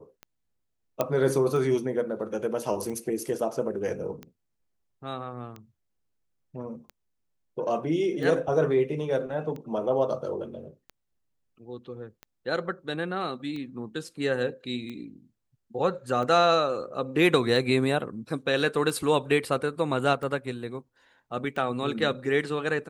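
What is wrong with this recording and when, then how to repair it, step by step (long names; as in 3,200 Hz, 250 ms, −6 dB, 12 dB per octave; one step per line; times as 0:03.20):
scratch tick 45 rpm −26 dBFS
0:01.01: click −11 dBFS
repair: click removal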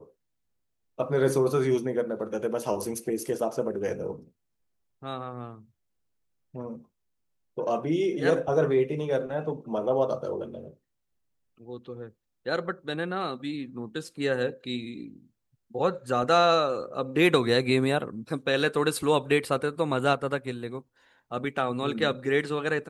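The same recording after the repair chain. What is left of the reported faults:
none of them is left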